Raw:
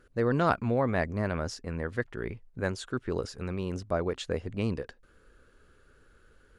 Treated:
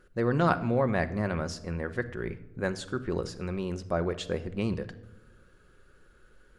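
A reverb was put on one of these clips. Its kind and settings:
rectangular room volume 3,300 cubic metres, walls furnished, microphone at 0.97 metres

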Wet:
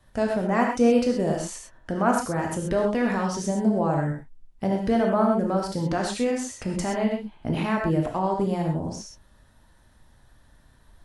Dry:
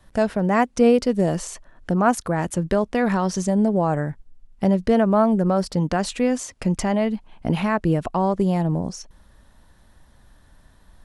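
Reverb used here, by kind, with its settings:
reverb whose tail is shaped and stops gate 150 ms flat, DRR 0 dB
level −5.5 dB

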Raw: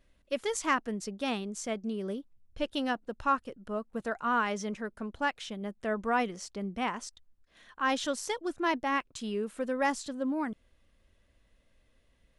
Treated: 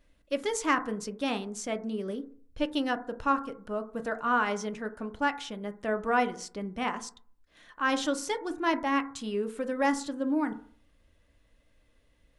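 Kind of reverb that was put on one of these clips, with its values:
feedback delay network reverb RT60 0.49 s, low-frequency decay 1×, high-frequency decay 0.25×, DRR 7.5 dB
level +1 dB

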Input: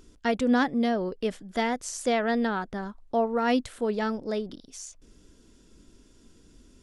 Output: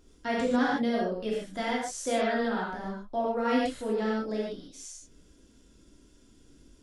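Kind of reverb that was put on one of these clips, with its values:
reverb whose tail is shaped and stops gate 170 ms flat, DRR −5.5 dB
level −8.5 dB

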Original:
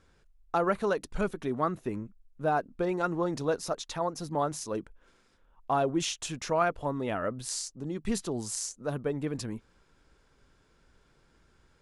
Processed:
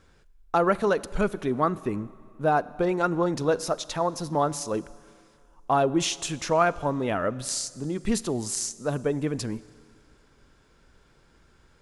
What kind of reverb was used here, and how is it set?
four-comb reverb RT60 2.1 s, combs from 31 ms, DRR 18.5 dB
level +5 dB

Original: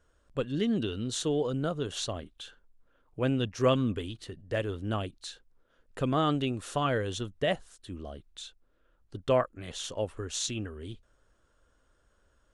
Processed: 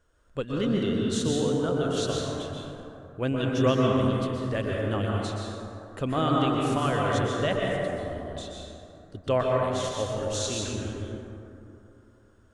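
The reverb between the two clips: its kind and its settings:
dense smooth reverb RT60 3 s, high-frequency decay 0.35×, pre-delay 110 ms, DRR −3 dB

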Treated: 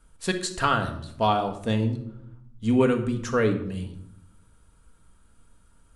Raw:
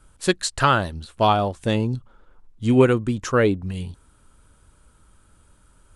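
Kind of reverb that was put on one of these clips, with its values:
rectangular room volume 1,900 cubic metres, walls furnished, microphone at 1.7 metres
level −6 dB

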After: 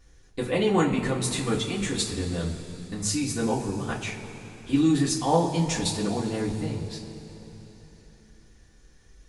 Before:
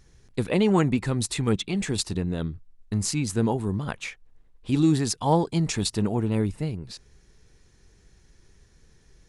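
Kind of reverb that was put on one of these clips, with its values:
coupled-rooms reverb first 0.24 s, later 3.7 s, from −19 dB, DRR −6.5 dB
level −6 dB

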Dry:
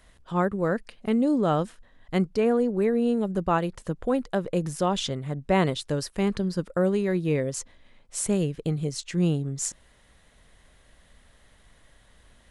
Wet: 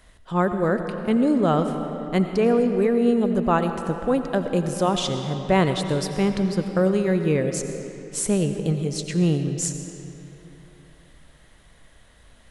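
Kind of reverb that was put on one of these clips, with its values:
comb and all-pass reverb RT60 3.2 s, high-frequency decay 0.7×, pre-delay 50 ms, DRR 7 dB
level +3 dB

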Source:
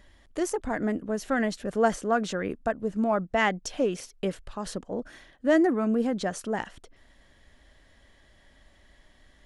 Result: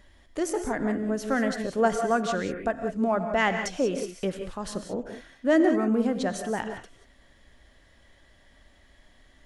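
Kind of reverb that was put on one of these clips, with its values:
reverb whose tail is shaped and stops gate 210 ms rising, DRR 6.5 dB

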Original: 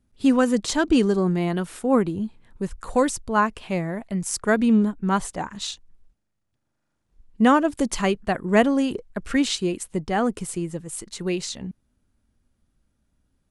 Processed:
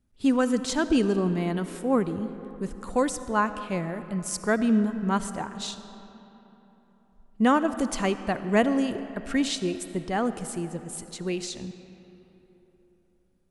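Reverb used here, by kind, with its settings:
comb and all-pass reverb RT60 3.7 s, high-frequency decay 0.55×, pre-delay 30 ms, DRR 11.5 dB
level −4 dB

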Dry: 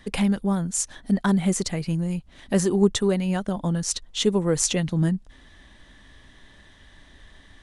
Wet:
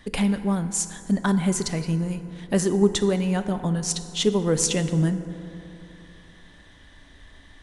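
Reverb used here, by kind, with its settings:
feedback delay network reverb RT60 3 s, high-frequency decay 0.4×, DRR 9 dB

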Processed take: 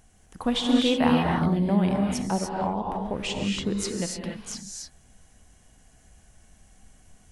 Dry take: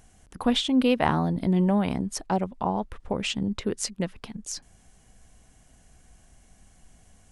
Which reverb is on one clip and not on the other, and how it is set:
reverb whose tail is shaped and stops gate 320 ms rising, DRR −0.5 dB
level −2.5 dB

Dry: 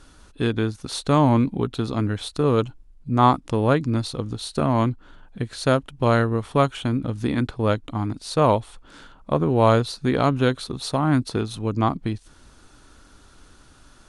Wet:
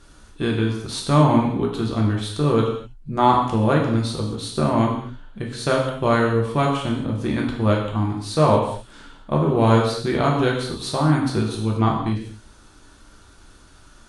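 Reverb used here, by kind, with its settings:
reverb whose tail is shaped and stops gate 270 ms falling, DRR −1.5 dB
level −2 dB

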